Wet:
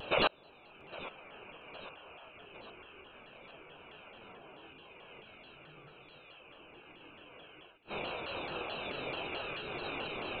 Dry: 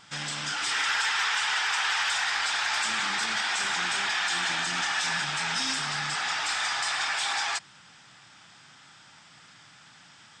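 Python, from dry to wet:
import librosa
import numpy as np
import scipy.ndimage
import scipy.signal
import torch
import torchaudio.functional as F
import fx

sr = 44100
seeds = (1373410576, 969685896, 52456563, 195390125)

y = fx.spec_dropout(x, sr, seeds[0], share_pct=25)
y = scipy.signal.sosfilt(scipy.signal.butter(2, 140.0, 'highpass', fs=sr, output='sos'), y)
y = fx.peak_eq(y, sr, hz=210.0, db=-14.5, octaves=0.73)
y = fx.fixed_phaser(y, sr, hz=1900.0, stages=6)
y = fx.rev_gated(y, sr, seeds[1], gate_ms=210, shape='rising', drr_db=-7.0)
y = fx.gate_flip(y, sr, shuts_db=-25.0, range_db=-39)
y = fx.freq_invert(y, sr, carrier_hz=3900)
y = fx.peak_eq(y, sr, hz=470.0, db=6.0, octaves=1.1)
y = fx.echo_feedback(y, sr, ms=809, feedback_pct=57, wet_db=-16.5)
y = fx.vibrato_shape(y, sr, shape='saw_down', rate_hz=4.6, depth_cents=160.0)
y = y * librosa.db_to_amplitude(9.5)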